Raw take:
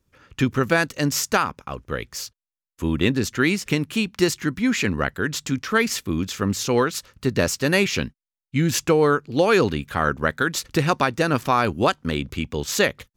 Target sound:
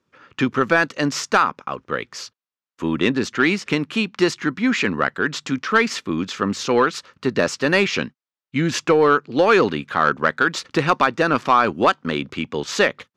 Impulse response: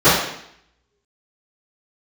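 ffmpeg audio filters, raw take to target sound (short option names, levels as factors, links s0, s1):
-af "highpass=190,lowpass=4800,equalizer=f=1200:w=1.7:g=4.5,acontrast=49,volume=0.708"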